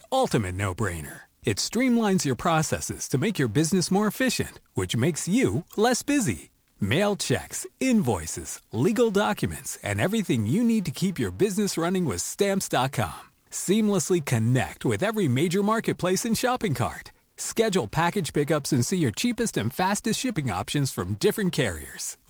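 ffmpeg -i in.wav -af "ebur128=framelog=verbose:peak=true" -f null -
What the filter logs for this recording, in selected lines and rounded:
Integrated loudness:
  I:         -25.3 LUFS
  Threshold: -35.5 LUFS
Loudness range:
  LRA:         1.4 LU
  Threshold: -45.4 LUFS
  LRA low:   -25.9 LUFS
  LRA high:  -24.5 LUFS
True peak:
  Peak:       -9.6 dBFS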